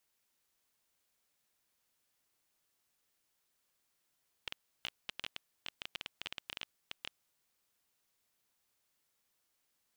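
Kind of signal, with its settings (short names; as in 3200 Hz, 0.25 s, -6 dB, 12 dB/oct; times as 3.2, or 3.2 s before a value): random clicks 13/s -22.5 dBFS 2.70 s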